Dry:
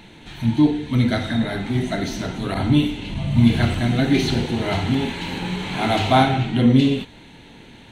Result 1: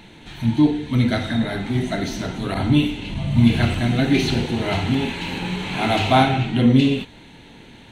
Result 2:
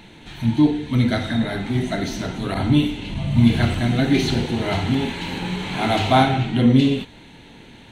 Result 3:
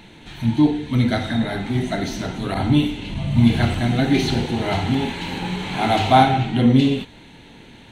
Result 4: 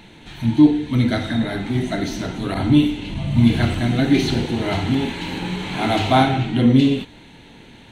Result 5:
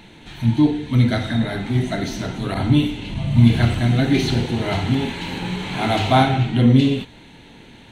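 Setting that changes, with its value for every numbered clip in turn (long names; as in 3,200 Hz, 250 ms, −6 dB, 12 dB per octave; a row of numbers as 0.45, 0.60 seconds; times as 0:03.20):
dynamic equaliser, frequency: 2,600, 7,000, 800, 310, 120 Hertz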